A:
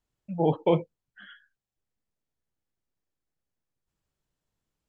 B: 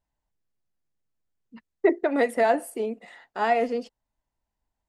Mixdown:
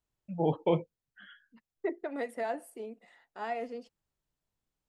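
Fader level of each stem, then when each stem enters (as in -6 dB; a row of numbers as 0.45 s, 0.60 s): -4.5 dB, -13.0 dB; 0.00 s, 0.00 s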